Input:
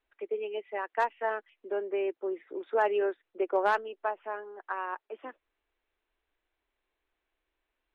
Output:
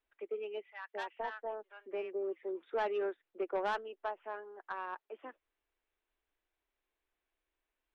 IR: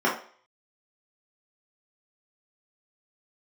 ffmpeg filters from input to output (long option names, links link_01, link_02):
-filter_complex "[0:a]asoftclip=type=tanh:threshold=-21dB,asettb=1/sr,asplit=3[link_01][link_02][link_03];[link_01]atrim=end=0.714[link_04];[link_02]atrim=start=0.71:end=2.74,asetpts=PTS-STARTPTS,afade=type=in:duration=0.004:curve=qsin,afade=type=out:start_time=2.026:duration=0.004:curve=qsin,acrossover=split=1000[link_05][link_06];[link_05]adelay=220[link_07];[link_07][link_06]amix=inputs=2:normalize=0,atrim=end_sample=89523[link_08];[link_03]atrim=start=2.736[link_09];[link_04][link_08]acrossfade=duration=0.004:curve1=hsin:curve2=qsin[link_10];[link_10][link_09]acrossfade=duration=0.004:curve1=qsin:curve2=hsin,volume=-5.5dB"